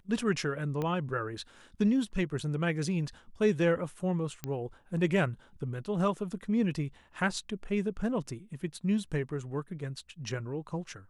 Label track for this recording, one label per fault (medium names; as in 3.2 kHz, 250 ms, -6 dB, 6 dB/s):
0.820000	0.820000	pop -21 dBFS
4.440000	4.440000	pop -20 dBFS